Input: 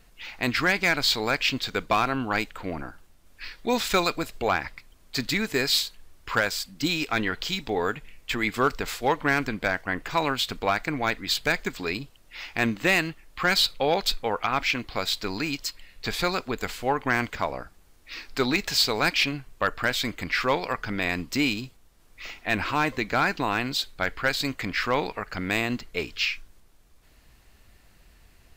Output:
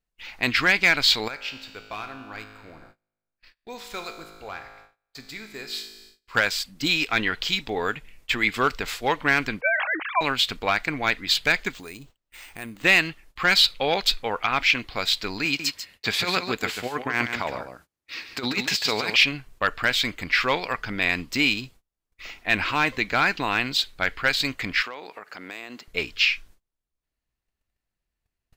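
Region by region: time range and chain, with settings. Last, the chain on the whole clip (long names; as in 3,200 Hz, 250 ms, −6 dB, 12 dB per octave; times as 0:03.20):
0:01.28–0:06.35: parametric band 210 Hz −4 dB 1.2 octaves + tuned comb filter 53 Hz, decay 1.8 s, mix 80%
0:09.61–0:10.21: three sine waves on the formant tracks + level that may fall only so fast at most 36 dB per second
0:11.72–0:12.84: bad sample-rate conversion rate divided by 4×, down none, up hold + downward compressor 2 to 1, threshold −41 dBFS
0:15.45–0:19.16: high-pass filter 87 Hz + compressor whose output falls as the input rises −26 dBFS, ratio −0.5 + single-tap delay 143 ms −7.5 dB
0:24.82–0:25.88: high-pass filter 320 Hz + downward compressor 5 to 1, threshold −33 dBFS
whole clip: noise gate −48 dBFS, range −27 dB; dynamic equaliser 2,800 Hz, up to +8 dB, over −38 dBFS, Q 0.7; level −1.5 dB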